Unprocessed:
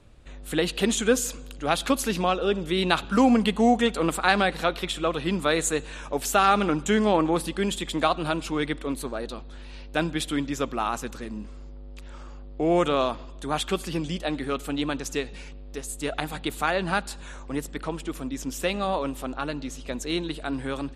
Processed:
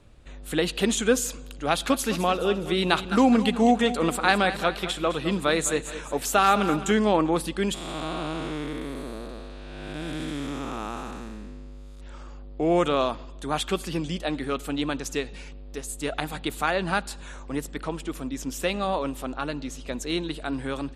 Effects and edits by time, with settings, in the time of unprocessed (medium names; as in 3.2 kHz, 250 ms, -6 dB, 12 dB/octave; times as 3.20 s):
1.69–6.92 s: feedback delay 210 ms, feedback 45%, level -13 dB
7.74–12.00 s: spectral blur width 461 ms